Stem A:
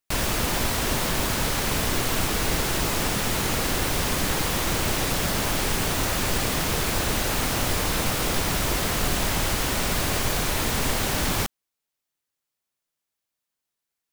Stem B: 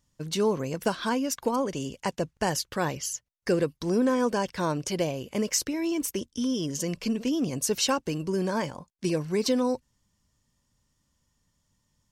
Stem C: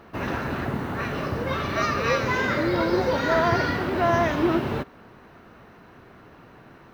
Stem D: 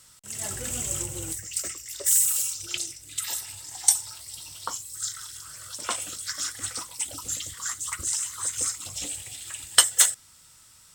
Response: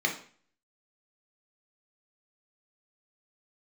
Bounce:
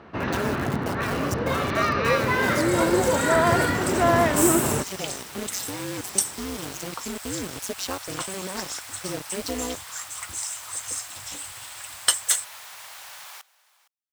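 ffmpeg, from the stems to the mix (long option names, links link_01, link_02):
-filter_complex "[0:a]highpass=frequency=770:width=0.5412,highpass=frequency=770:width=1.3066,adelay=1950,volume=-14.5dB,asplit=2[link_01][link_02];[link_02]volume=-21dB[link_03];[1:a]acrusher=bits=4:mix=0:aa=0.000001,tremolo=f=190:d=1,volume=-2dB[link_04];[2:a]lowpass=5200,volume=1.5dB[link_05];[3:a]bandreject=frequency=6900:width=22,adelay=2300,volume=-3.5dB[link_06];[link_03]aecho=0:1:463:1[link_07];[link_01][link_04][link_05][link_06][link_07]amix=inputs=5:normalize=0,highpass=55"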